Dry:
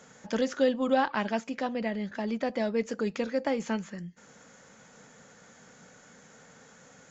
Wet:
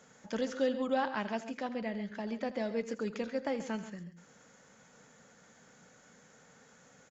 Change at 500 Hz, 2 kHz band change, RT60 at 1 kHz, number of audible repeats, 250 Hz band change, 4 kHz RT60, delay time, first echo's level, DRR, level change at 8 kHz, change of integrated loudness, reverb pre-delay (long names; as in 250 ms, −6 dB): −5.5 dB, −5.5 dB, no reverb audible, 2, −5.5 dB, no reverb audible, 82 ms, −15.5 dB, no reverb audible, can't be measured, −5.5 dB, no reverb audible